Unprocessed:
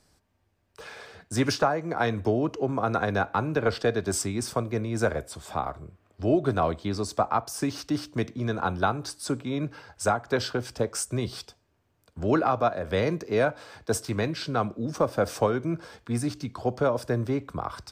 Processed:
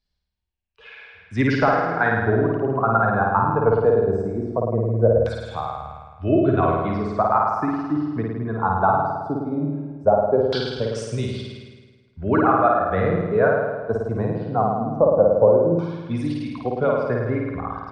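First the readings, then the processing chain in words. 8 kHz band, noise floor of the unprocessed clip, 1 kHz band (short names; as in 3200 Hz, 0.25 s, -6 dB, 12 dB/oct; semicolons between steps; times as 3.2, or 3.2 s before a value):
under -10 dB, -70 dBFS, +8.0 dB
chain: per-bin expansion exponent 1.5; flutter echo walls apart 9.2 m, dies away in 1.4 s; dynamic EQ 2400 Hz, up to -4 dB, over -48 dBFS, Q 1.5; LFO low-pass saw down 0.19 Hz 540–3900 Hz; gain +4.5 dB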